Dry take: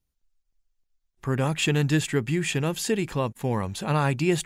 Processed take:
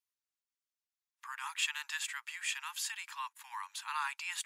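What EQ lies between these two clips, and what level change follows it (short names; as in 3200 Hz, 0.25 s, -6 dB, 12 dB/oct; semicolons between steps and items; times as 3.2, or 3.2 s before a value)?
steep high-pass 900 Hz 96 dB/oct; -6.5 dB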